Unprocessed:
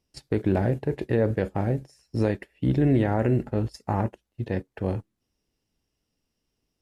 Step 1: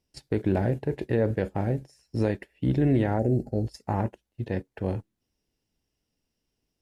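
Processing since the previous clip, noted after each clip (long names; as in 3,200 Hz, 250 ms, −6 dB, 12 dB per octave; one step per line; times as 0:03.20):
gain on a spectral selection 0:03.19–0:03.68, 820–4,100 Hz −20 dB
parametric band 1,200 Hz −4.5 dB 0.21 octaves
level −1.5 dB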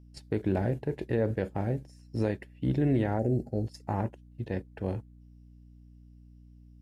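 mains hum 60 Hz, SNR 21 dB
level −3.5 dB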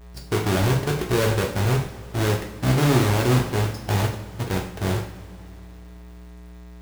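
each half-wave held at its own peak
leveller curve on the samples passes 1
coupled-rooms reverb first 0.5 s, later 3 s, from −18 dB, DRR 0 dB
level −1 dB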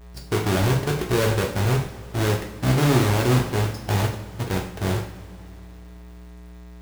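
no processing that can be heard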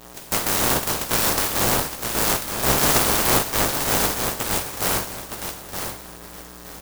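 ceiling on every frequency bin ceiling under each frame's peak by 27 dB
repeating echo 916 ms, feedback 25%, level −6.5 dB
converter with an unsteady clock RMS 0.12 ms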